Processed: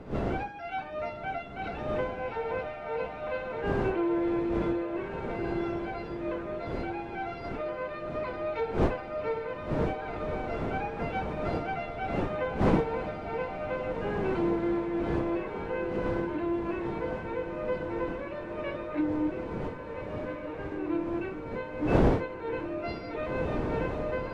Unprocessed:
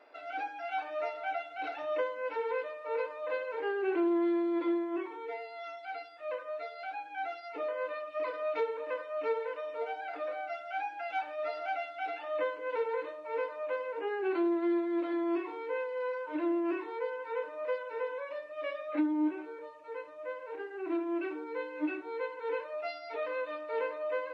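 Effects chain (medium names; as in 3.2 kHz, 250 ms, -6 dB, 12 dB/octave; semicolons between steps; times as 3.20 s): wind noise 420 Hz -36 dBFS; echo that smears into a reverb 1669 ms, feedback 40%, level -6 dB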